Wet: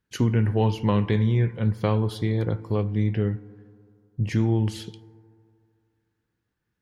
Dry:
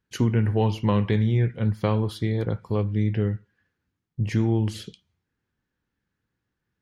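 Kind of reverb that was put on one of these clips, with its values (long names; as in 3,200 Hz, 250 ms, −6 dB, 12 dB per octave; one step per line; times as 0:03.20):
feedback delay network reverb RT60 2.4 s, low-frequency decay 0.9×, high-frequency decay 0.3×, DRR 18 dB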